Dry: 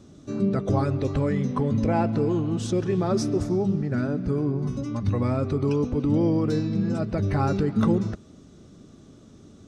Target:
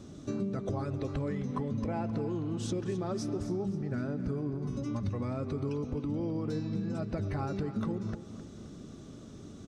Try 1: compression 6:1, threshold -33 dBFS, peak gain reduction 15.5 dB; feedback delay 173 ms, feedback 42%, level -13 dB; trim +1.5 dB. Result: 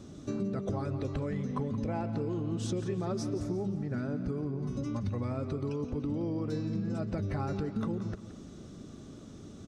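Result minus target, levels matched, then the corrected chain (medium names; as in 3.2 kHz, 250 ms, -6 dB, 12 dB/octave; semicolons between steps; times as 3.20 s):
echo 89 ms early
compression 6:1, threshold -33 dBFS, peak gain reduction 15.5 dB; feedback delay 262 ms, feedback 42%, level -13 dB; trim +1.5 dB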